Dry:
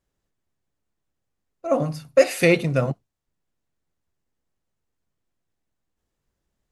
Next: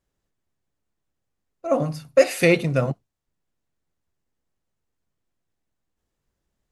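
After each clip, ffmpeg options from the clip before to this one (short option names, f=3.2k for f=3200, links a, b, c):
-af anull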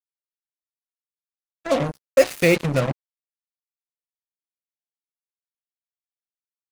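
-af "acrusher=bits=3:mix=0:aa=0.5"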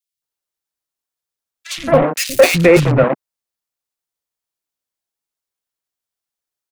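-filter_complex "[0:a]acrossover=split=210|2300[a][b][c];[a]adelay=120[d];[b]adelay=220[e];[d][e][c]amix=inputs=3:normalize=0,apsyclip=12dB,volume=-1.5dB"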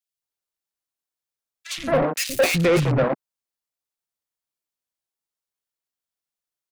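-af "asoftclip=type=tanh:threshold=-8.5dB,volume=-4.5dB"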